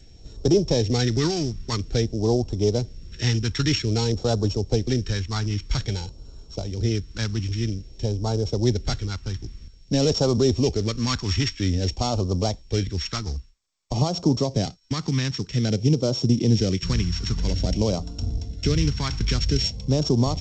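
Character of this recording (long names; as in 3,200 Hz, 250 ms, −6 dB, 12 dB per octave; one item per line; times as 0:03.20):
a buzz of ramps at a fixed pitch in blocks of 8 samples
phaser sweep stages 2, 0.51 Hz, lowest notch 570–1,800 Hz
G.722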